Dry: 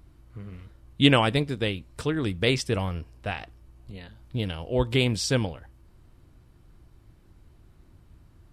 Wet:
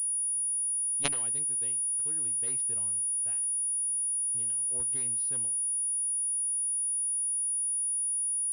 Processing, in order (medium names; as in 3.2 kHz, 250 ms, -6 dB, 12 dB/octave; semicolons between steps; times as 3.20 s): crossover distortion -40 dBFS; Chebyshev shaper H 3 -7 dB, 5 -29 dB, 8 -43 dB, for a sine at -1.5 dBFS; class-D stage that switches slowly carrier 9.7 kHz; trim -6 dB